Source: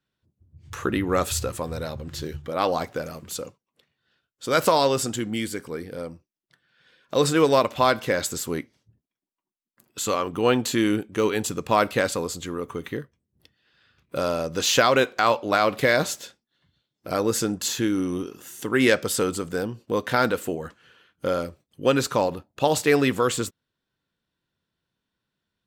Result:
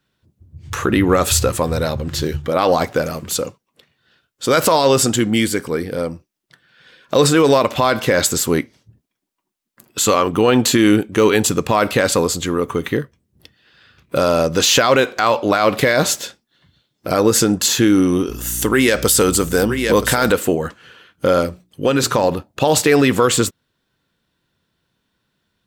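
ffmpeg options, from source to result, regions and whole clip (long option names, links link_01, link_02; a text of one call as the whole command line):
ffmpeg -i in.wav -filter_complex "[0:a]asettb=1/sr,asplit=3[link_01][link_02][link_03];[link_01]atrim=end=18.294[link_04];[link_02]atrim=start=18.29:end=20.32,asetpts=PTS-STARTPTS,afade=type=in:duration=0.004:curve=qsin,afade=type=out:start_time=2.026:duration=0.004:curve=qsin,highshelf=frequency=5800:gain=9.5,aecho=1:1:972:0.211,atrim=end_sample=89523,aeval=exprs='val(0)+0.00891*(sin(2*PI*60*n/s)+sin(2*PI*2*60*n/s)/2+sin(2*PI*3*60*n/s)/3+sin(2*PI*4*60*n/s)/4+sin(2*PI*5*60*n/s)/5)':channel_layout=same[link_05];[link_03]atrim=start=20.316[link_06];[link_04][link_05]acrossfade=duration=0.004:curve1=hsin:curve2=qsin[link_07];[link_07][link_06]acrossfade=duration=0.004:curve1=qsin:curve2=hsin,asettb=1/sr,asplit=3[link_08][link_09][link_10];[link_08]atrim=end=21.414[link_11];[link_09]atrim=start=21.41:end=22.24,asetpts=PTS-STARTPTS,afade=type=in:duration=0.004:curve=qsin,afade=type=out:start_time=0.826:duration=0.004:curve=qsin,bandreject=frequency=60:width_type=h:width=6,bandreject=frequency=120:width_type=h:width=6,bandreject=frequency=180:width_type=h:width=6,bandreject=frequency=240:width_type=h:width=6,bandreject=frequency=300:width_type=h:width=6,bandreject=frequency=360:width_type=h:width=6,acompressor=threshold=-22dB:ratio=6:attack=3.2:release=140:knee=1:detection=peak[link_12];[link_10]atrim=start=22.236[link_13];[link_11][link_12]acrossfade=duration=0.004:curve1=hsin:curve2=qsin[link_14];[link_14][link_13]acrossfade=duration=0.004:curve1=qsin:curve2=hsin,alimiter=limit=-15dB:level=0:latency=1:release=63,acontrast=65,volume=5dB" out.wav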